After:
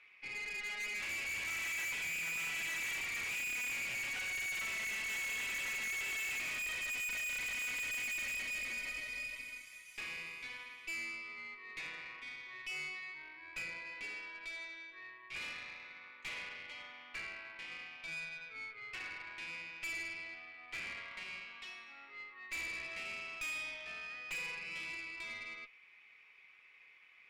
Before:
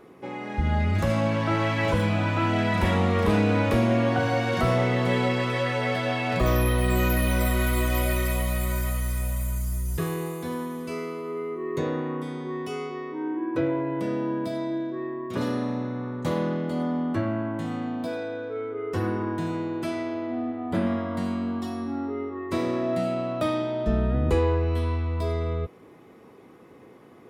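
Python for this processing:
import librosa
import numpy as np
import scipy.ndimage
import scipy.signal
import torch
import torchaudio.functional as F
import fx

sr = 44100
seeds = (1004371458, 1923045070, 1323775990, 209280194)

y = fx.ladder_bandpass(x, sr, hz=2500.0, resonance_pct=80)
y = fx.tube_stage(y, sr, drive_db=47.0, bias=0.5)
y = F.gain(torch.from_numpy(y), 9.5).numpy()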